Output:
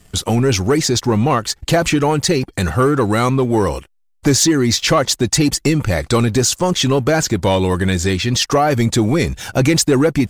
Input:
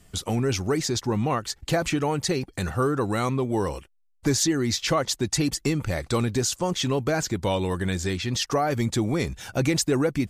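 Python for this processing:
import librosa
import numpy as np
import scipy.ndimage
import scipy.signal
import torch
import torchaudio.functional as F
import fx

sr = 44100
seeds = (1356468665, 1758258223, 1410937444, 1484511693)

y = fx.leveller(x, sr, passes=1)
y = y * 10.0 ** (6.5 / 20.0)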